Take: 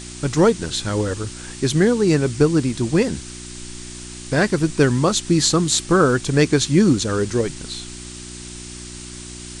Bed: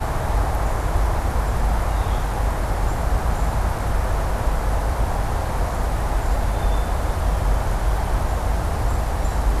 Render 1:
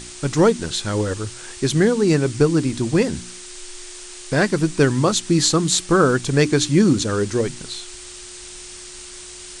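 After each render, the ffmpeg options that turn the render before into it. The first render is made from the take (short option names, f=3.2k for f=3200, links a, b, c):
-af "bandreject=f=60:t=h:w=4,bandreject=f=120:t=h:w=4,bandreject=f=180:t=h:w=4,bandreject=f=240:t=h:w=4,bandreject=f=300:t=h:w=4"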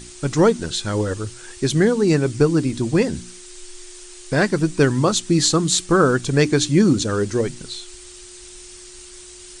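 -af "afftdn=nr=6:nf=-38"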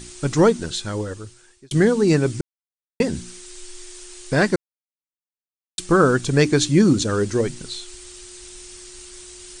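-filter_complex "[0:a]asplit=6[a][b][c][d][e][f];[a]atrim=end=1.71,asetpts=PTS-STARTPTS,afade=t=out:st=0.44:d=1.27[g];[b]atrim=start=1.71:end=2.41,asetpts=PTS-STARTPTS,afade=t=in:d=0.004:c=hsin,afade=t=out:st=0.696:d=0.004:c=hsin[h];[c]atrim=start=2.41:end=3,asetpts=PTS-STARTPTS,volume=0[i];[d]atrim=start=3:end=4.56,asetpts=PTS-STARTPTS,afade=t=in:d=0.004:c=hsin,afade=t=out:st=1.556:d=0.004:c=hsin[j];[e]atrim=start=4.56:end=5.78,asetpts=PTS-STARTPTS,volume=0[k];[f]atrim=start=5.78,asetpts=PTS-STARTPTS,afade=t=in:d=0.004:c=hsin[l];[g][h][i][j][k][l]concat=n=6:v=0:a=1"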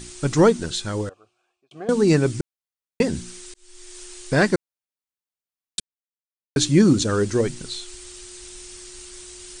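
-filter_complex "[0:a]asettb=1/sr,asplit=3[a][b][c];[a]atrim=end=1.094[d];[b]atrim=start=1.09:end=1.89,asetpts=PTS-STARTPTS,afade=t=in:d=0.004:c=qsin,afade=t=out:st=0.796:d=0.004:c=qsin,asplit=3[e][f][g];[e]bandpass=f=730:t=q:w=8,volume=0dB[h];[f]bandpass=f=1.09k:t=q:w=8,volume=-6dB[i];[g]bandpass=f=2.44k:t=q:w=8,volume=-9dB[j];[h][i][j]amix=inputs=3:normalize=0[k];[c]atrim=start=1.886[l];[d][k]acrossfade=d=0.004:c1=hsin:c2=qsin[m];[m][l]acrossfade=d=0.004:c1=qsin:c2=hsin,asplit=4[n][o][p][q];[n]atrim=end=3.54,asetpts=PTS-STARTPTS,afade=t=out:st=3.536:d=0.004:c=hsin[r];[o]atrim=start=3.54:end=5.8,asetpts=PTS-STARTPTS,afade=t=in:d=0.47,afade=t=out:st=2.256:d=0.004:c=hsin[s];[p]atrim=start=5.8:end=6.56,asetpts=PTS-STARTPTS,volume=0[t];[q]atrim=start=6.56,asetpts=PTS-STARTPTS,afade=t=in:d=0.004:c=hsin[u];[r][s][t][u]concat=n=4:v=0:a=1"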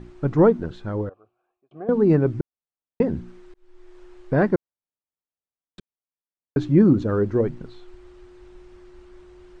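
-af "lowpass=1.1k"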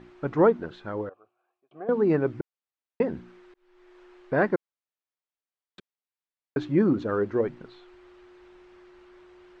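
-af "lowpass=2.5k,aemphasis=mode=production:type=riaa"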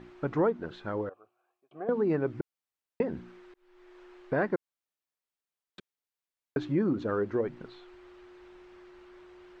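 -af "acompressor=threshold=-28dB:ratio=2"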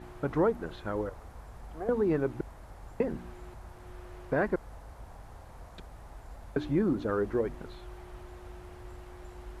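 -filter_complex "[1:a]volume=-26dB[a];[0:a][a]amix=inputs=2:normalize=0"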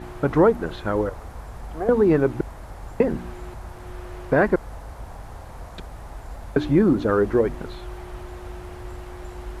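-af "volume=10dB"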